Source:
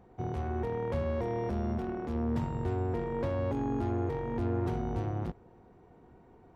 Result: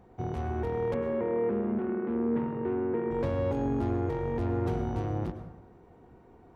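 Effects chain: 0.94–3.11 speaker cabinet 210–2400 Hz, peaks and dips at 220 Hz +7 dB, 410 Hz +7 dB, 690 Hz -7 dB; plate-style reverb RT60 0.97 s, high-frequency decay 0.5×, pre-delay 90 ms, DRR 9 dB; gain +1.5 dB

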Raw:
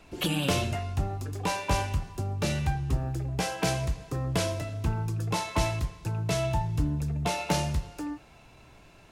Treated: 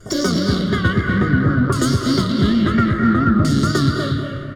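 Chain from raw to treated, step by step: rattling part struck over -30 dBFS, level -20 dBFS; wow and flutter 120 cents; comb 1.2 ms, depth 93%; formant shift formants -3 st; diffused feedback echo 0.504 s, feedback 43%, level -3 dB; on a send at -14.5 dB: reverb RT60 0.50 s, pre-delay 3 ms; on the sum: LFO low-pass saw down 0.29 Hz 610–3900 Hz; in parallel at -5.5 dB: soft clip -17.5 dBFS, distortion -13 dB; on the sum: bell 1800 Hz -11 dB 2.9 oct; speed mistake 7.5 ips tape played at 15 ips; gain +4 dB

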